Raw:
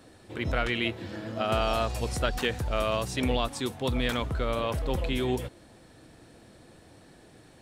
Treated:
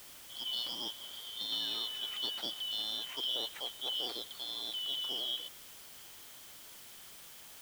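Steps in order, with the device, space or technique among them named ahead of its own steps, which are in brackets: 4.06–4.74 HPF 250 Hz 12 dB/oct; split-band scrambled radio (four-band scrambler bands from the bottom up 3412; BPF 330–3200 Hz; white noise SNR 12 dB); gain -6.5 dB

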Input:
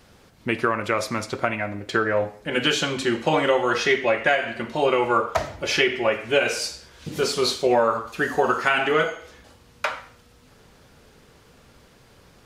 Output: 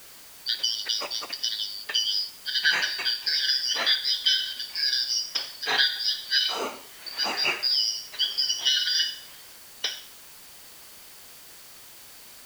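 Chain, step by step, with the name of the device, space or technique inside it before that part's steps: split-band scrambled radio (four-band scrambler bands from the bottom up 4321; BPF 390–3200 Hz; white noise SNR 19 dB); gain +2.5 dB

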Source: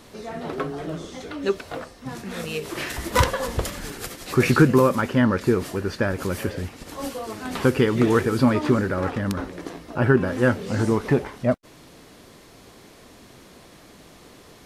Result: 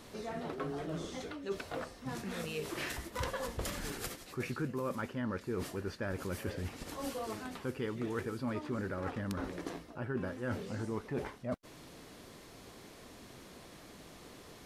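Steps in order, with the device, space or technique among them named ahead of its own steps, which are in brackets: compression on the reversed sound (reverse; compressor 6:1, threshold -30 dBFS, peak gain reduction 18.5 dB; reverse); gain -5 dB

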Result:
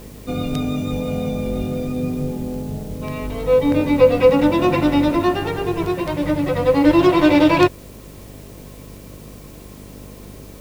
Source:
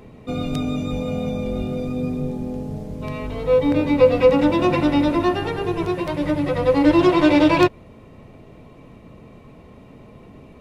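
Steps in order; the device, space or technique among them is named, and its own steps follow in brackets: video cassette with head-switching buzz (buzz 50 Hz, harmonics 11, -42 dBFS -4 dB/oct; white noise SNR 29 dB); gain +1.5 dB

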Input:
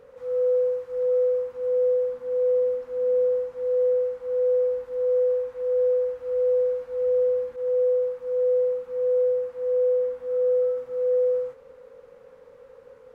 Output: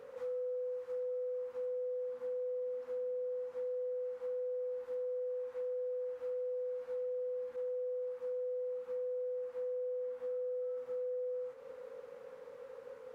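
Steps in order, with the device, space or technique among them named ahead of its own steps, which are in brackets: HPF 270 Hz 6 dB/oct; serial compression, leveller first (compressor 2:1, threshold -26 dBFS, peak gain reduction 3.5 dB; compressor, threshold -38 dBFS, peak gain reduction 13 dB)

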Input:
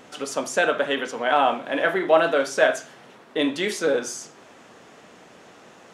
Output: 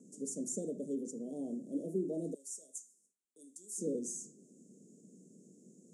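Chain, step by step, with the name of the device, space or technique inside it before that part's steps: 2.34–3.78 differentiator; inverse Chebyshev band-stop 1200–2600 Hz, stop band 80 dB; gate with hold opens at -57 dBFS; television speaker (speaker cabinet 160–8800 Hz, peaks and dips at 190 Hz +5 dB, 310 Hz -4 dB, 800 Hz -6 dB, 2700 Hz +8 dB, 4100 Hz -6 dB, 7000 Hz +4 dB); high shelf 7400 Hz +5.5 dB; gain -4 dB

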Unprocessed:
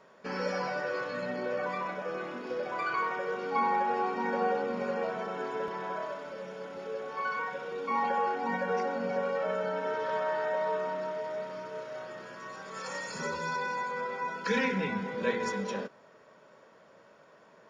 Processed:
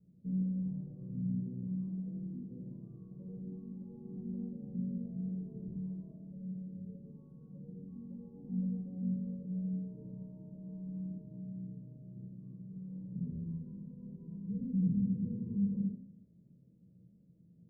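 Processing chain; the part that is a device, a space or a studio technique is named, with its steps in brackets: club heard from the street (limiter -26 dBFS, peak gain reduction 10 dB; LPF 170 Hz 24 dB/oct; reverb RT60 0.70 s, pre-delay 3 ms, DRR -5.5 dB); gain +6 dB

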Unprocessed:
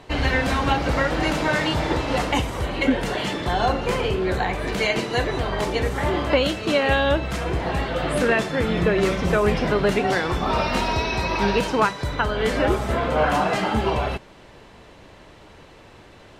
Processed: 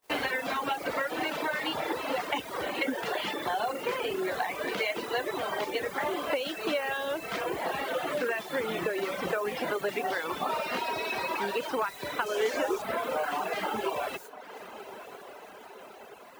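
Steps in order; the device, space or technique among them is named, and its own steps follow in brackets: baby monitor (BPF 360–4100 Hz; compressor 6:1, threshold -26 dBFS, peak gain reduction 11.5 dB; white noise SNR 17 dB; gate -42 dBFS, range -36 dB); 12.26–12.82 fifteen-band EQ 160 Hz -11 dB, 400 Hz +5 dB, 6300 Hz +9 dB; diffused feedback echo 1.099 s, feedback 63%, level -14 dB; reverb removal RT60 1.1 s

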